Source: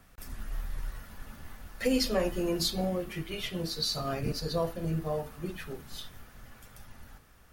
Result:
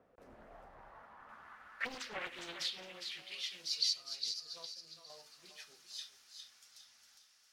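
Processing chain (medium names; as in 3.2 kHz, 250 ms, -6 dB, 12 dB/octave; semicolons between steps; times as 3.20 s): 0.63–1.29 s: treble shelf 3.4 kHz -7.5 dB; 3.93–5.10 s: gate -28 dBFS, range -8 dB; compression, threshold -28 dBFS, peak gain reduction 6 dB; band-pass sweep 500 Hz -> 5.3 kHz, 0.15–3.61 s; on a send: thinning echo 408 ms, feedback 36%, high-pass 860 Hz, level -6 dB; on the sum: loudspeaker Doppler distortion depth 0.73 ms; trim +3.5 dB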